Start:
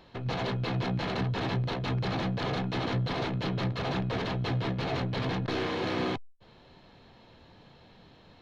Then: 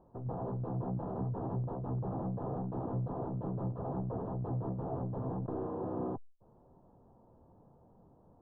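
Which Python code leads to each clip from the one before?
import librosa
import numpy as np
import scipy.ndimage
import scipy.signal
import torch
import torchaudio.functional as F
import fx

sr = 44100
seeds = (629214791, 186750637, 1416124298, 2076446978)

y = scipy.signal.sosfilt(scipy.signal.cheby2(4, 40, 2000.0, 'lowpass', fs=sr, output='sos'), x)
y = y * librosa.db_to_amplitude(-5.5)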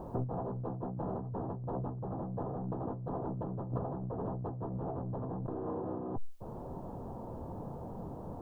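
y = fx.over_compress(x, sr, threshold_db=-47.0, ratio=-1.0)
y = y * librosa.db_to_amplitude(9.5)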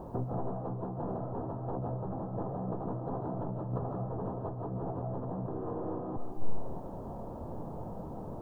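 y = fx.rev_freeverb(x, sr, rt60_s=0.72, hf_ratio=0.9, predelay_ms=100, drr_db=2.5)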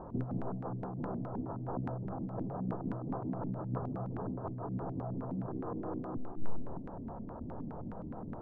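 y = fx.filter_lfo_lowpass(x, sr, shape='square', hz=4.8, low_hz=260.0, high_hz=1500.0, q=2.6)
y = y * librosa.db_to_amplitude(-3.5)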